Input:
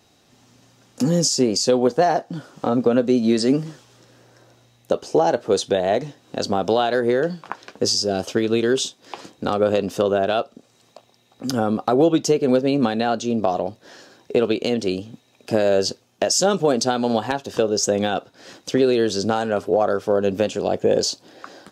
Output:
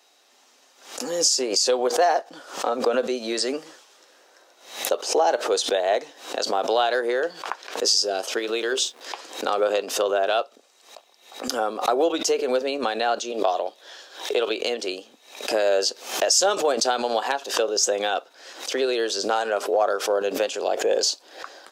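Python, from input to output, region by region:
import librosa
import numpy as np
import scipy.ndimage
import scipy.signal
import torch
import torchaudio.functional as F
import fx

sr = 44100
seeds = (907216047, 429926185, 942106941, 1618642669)

y = fx.chain(x, sr, fx.peak_eq(hz=93.0, db=-13.5, octaves=1.0),
    fx.hum_notches(base_hz=60, count=10),
    fx.backlash(play_db=-49.0), at=(8.39, 9.01))
y = fx.chain(y, sr, fx.highpass(hz=280.0, slope=12),
    fx.peak_eq(hz=3400.0, db=9.5, octaves=0.25), at=(13.32, 14.5))
y = scipy.signal.sosfilt(scipy.signal.bessel(4, 590.0, 'highpass', norm='mag', fs=sr, output='sos'), y)
y = fx.pre_swell(y, sr, db_per_s=110.0)
y = y * librosa.db_to_amplitude(1.0)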